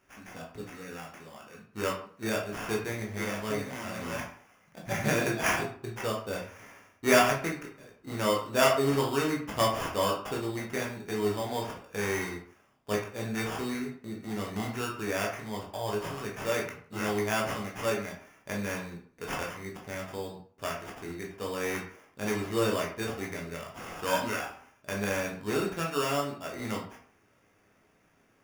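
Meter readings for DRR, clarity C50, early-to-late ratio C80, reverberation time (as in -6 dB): -2.0 dB, 6.5 dB, 10.5 dB, 0.50 s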